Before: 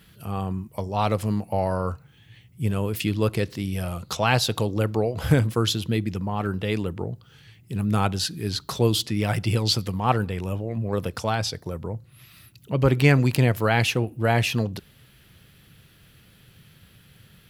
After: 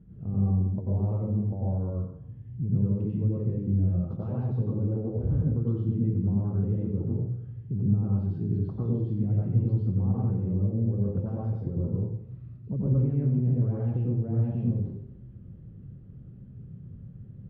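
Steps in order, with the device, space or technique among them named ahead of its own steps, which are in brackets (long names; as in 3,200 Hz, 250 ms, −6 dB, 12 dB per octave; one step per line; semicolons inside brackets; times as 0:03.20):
television next door (downward compressor 6 to 1, threshold −31 dBFS, peak gain reduction 18 dB; low-pass filter 260 Hz 12 dB per octave; convolution reverb RT60 0.75 s, pre-delay 86 ms, DRR −5.5 dB)
level +4 dB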